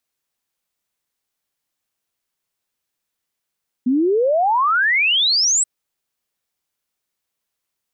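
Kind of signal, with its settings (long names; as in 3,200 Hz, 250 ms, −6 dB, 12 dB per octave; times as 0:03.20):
exponential sine sweep 240 Hz → 8,100 Hz 1.78 s −13.5 dBFS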